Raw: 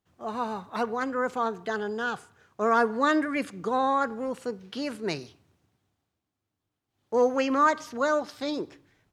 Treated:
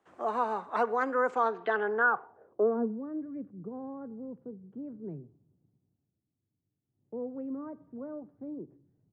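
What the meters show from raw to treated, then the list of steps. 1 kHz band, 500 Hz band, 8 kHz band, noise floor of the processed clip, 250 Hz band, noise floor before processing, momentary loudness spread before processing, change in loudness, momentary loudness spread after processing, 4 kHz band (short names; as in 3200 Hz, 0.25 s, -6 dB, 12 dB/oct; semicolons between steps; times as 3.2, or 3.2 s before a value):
-5.5 dB, -4.5 dB, under -20 dB, -85 dBFS, -6.5 dB, -85 dBFS, 11 LU, -4.5 dB, 16 LU, under -15 dB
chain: low-pass sweep 8400 Hz -> 140 Hz, 1.28–3.07; three-band isolator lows -19 dB, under 290 Hz, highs -19 dB, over 2100 Hz; three-band squash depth 40%; gain +2.5 dB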